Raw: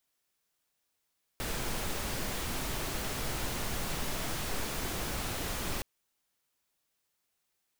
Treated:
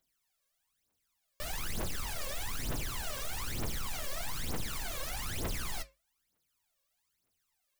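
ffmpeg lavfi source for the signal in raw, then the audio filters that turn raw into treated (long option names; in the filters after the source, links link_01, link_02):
-f lavfi -i "anoisesrc=color=pink:amplitude=0.0966:duration=4.42:sample_rate=44100:seed=1"
-af "flanger=delay=7.5:depth=4.2:regen=-75:speed=0.39:shape=triangular,aeval=exprs='0.0126*(abs(mod(val(0)/0.0126+3,4)-2)-1)':channel_layout=same,aphaser=in_gain=1:out_gain=1:delay=1.9:decay=0.78:speed=1.1:type=triangular"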